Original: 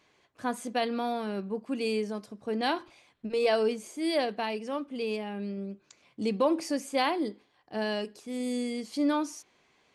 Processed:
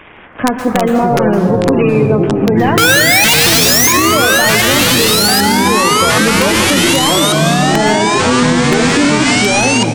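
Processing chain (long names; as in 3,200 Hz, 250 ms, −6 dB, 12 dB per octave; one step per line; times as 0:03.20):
variable-slope delta modulation 16 kbit/s
gate on every frequency bin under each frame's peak −25 dB strong
downward compressor 5 to 1, threshold −36 dBFS, peak gain reduction 13.5 dB
single-tap delay 560 ms −22 dB
sound drawn into the spectrogram rise, 0:02.77–0:03.93, 430–2,300 Hz −28 dBFS
wrap-around overflow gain 27.5 dB
dense smooth reverb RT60 1.1 s, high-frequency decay 0.45×, pre-delay 110 ms, DRR 8 dB
delay with pitch and tempo change per echo 166 ms, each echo −5 semitones, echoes 3
boost into a limiter +27.5 dB
level −1 dB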